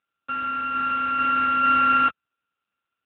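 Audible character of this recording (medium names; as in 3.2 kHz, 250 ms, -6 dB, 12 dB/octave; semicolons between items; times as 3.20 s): a buzz of ramps at a fixed pitch in blocks of 32 samples; AMR-NB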